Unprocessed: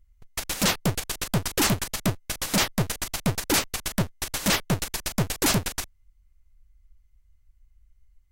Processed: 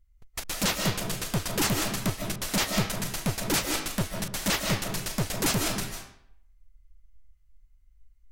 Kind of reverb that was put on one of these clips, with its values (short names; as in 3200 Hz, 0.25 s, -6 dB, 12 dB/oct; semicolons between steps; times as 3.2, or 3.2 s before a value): digital reverb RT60 0.68 s, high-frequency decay 0.8×, pre-delay 0.11 s, DRR 2 dB; gain -4 dB